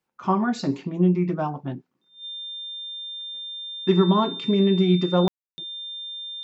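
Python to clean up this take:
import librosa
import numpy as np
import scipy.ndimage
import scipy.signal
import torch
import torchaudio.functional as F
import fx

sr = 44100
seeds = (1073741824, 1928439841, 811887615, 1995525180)

y = fx.notch(x, sr, hz=3600.0, q=30.0)
y = fx.fix_ambience(y, sr, seeds[0], print_start_s=1.77, print_end_s=2.27, start_s=5.28, end_s=5.58)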